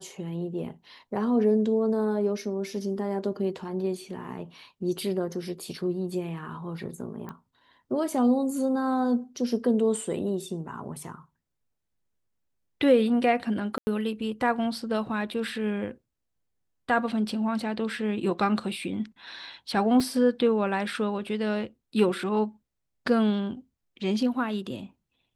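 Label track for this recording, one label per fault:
7.290000	7.290000	pop -25 dBFS
13.780000	13.870000	dropout 90 ms
20.000000	20.000000	dropout 3.3 ms

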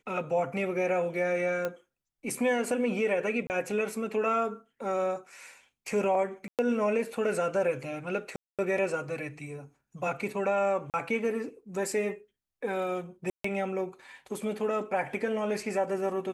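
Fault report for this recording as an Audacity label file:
1.650000	1.650000	pop -18 dBFS
3.470000	3.500000	dropout 29 ms
6.480000	6.590000	dropout 108 ms
8.360000	8.590000	dropout 227 ms
10.900000	10.940000	dropout 38 ms
13.300000	13.440000	dropout 144 ms

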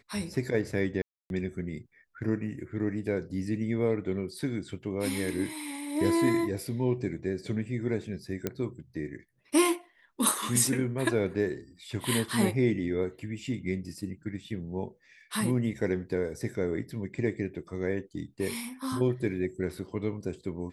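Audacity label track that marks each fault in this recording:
1.020000	1.300000	dropout 281 ms
8.470000	8.470000	pop -15 dBFS

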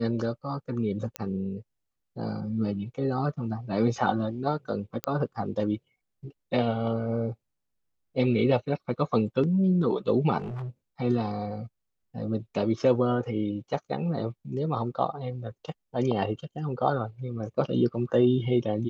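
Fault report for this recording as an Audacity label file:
1.160000	1.160000	pop -15 dBFS
5.040000	5.040000	pop -13 dBFS
10.390000	10.690000	clipped -31.5 dBFS

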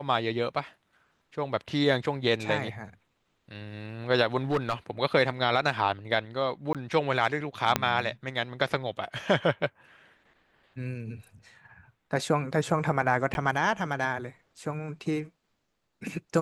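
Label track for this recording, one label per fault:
4.510000	4.730000	clipped -21 dBFS
6.730000	6.750000	dropout 17 ms
7.760000	7.760000	pop -7 dBFS
13.340000	13.350000	dropout

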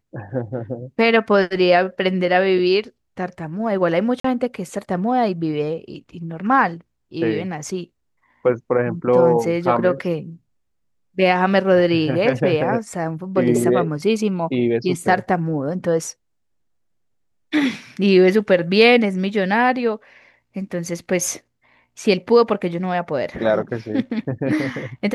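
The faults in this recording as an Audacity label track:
4.200000	4.240000	dropout 44 ms

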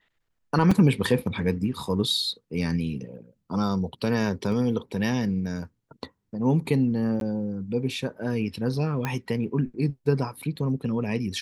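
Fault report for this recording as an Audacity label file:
0.710000	0.710000	dropout 4.6 ms
4.520000	4.520000	dropout 2.7 ms
7.200000	7.210000	dropout 12 ms
9.050000	9.050000	pop -14 dBFS

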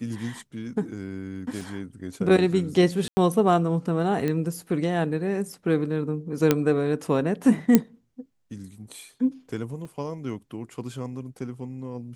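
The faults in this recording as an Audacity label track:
1.610000	1.610000	dropout 2.8 ms
3.080000	3.170000	dropout 90 ms
4.280000	4.280000	pop -15 dBFS
6.510000	6.510000	pop -5 dBFS
7.750000	7.750000	pop -3 dBFS
9.850000	9.850000	dropout 3.3 ms

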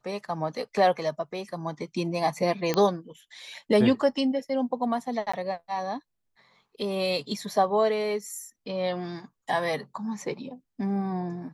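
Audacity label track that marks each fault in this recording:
2.740000	2.740000	pop -11 dBFS
5.320000	5.330000	dropout 15 ms

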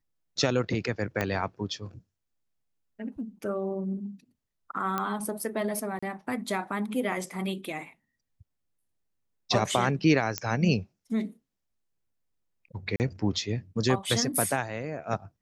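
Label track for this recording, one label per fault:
1.210000	1.210000	pop -13 dBFS
4.980000	4.980000	pop -15 dBFS
5.990000	6.030000	dropout 35 ms
10.380000	10.380000	pop -11 dBFS
12.960000	13.000000	dropout 39 ms

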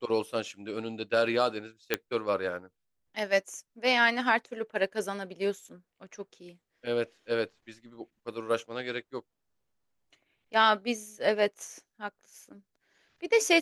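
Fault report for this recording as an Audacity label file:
1.940000	1.940000	pop -10 dBFS

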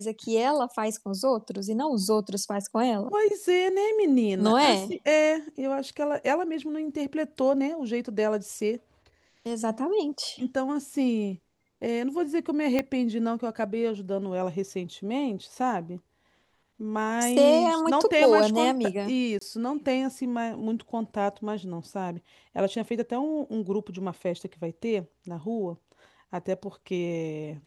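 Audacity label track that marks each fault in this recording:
12.790000	12.790000	pop -12 dBFS
19.390000	19.410000	dropout 24 ms

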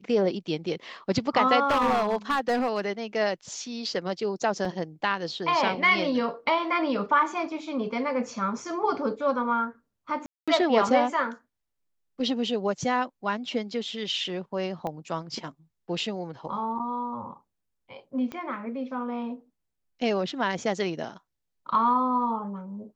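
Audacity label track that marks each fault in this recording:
1.650000	2.800000	clipped -19.5 dBFS
4.650000	4.650000	dropout 2.5 ms
10.260000	10.480000	dropout 216 ms
14.870000	14.870000	pop -20 dBFS
18.320000	18.320000	pop -22 dBFS

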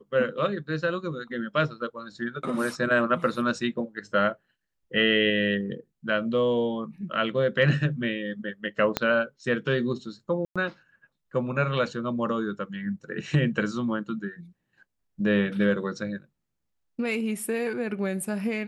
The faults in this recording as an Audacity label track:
8.970000	8.970000	pop -8 dBFS
10.450000	10.560000	dropout 106 ms

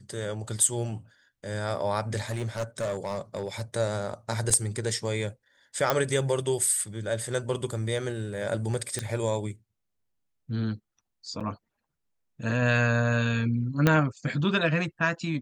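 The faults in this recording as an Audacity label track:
2.290000	3.620000	clipped -25.5 dBFS
4.500000	4.500000	dropout 4 ms
5.900000	5.900000	pop -8 dBFS
8.990000	8.990000	pop -15 dBFS
11.400000	11.410000	dropout 6.1 ms
13.870000	13.870000	pop -7 dBFS

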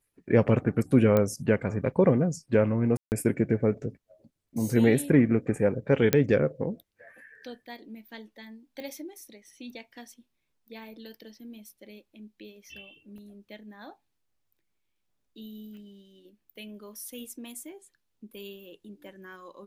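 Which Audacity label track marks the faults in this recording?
1.170000	1.170000	pop -12 dBFS
2.970000	3.120000	dropout 149 ms
6.130000	6.130000	pop -7 dBFS
8.800000	8.800000	pop -28 dBFS
13.180000	13.180000	dropout 3.2 ms
15.770000	15.770000	pop -40 dBFS

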